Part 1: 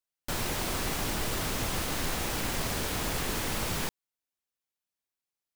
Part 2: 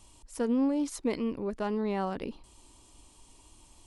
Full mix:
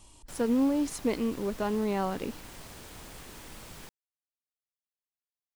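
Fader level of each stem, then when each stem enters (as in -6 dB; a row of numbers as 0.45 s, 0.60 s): -15.5 dB, +1.5 dB; 0.00 s, 0.00 s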